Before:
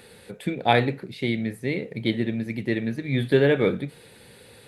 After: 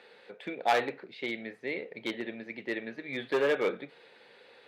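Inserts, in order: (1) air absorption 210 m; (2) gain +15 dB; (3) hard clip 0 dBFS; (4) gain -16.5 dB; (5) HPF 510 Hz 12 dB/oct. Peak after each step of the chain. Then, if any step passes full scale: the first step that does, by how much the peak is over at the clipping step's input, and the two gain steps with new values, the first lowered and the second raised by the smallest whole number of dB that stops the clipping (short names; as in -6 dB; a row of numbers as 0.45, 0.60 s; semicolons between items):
-6.0, +9.0, 0.0, -16.5, -12.0 dBFS; step 2, 9.0 dB; step 2 +6 dB, step 4 -7.5 dB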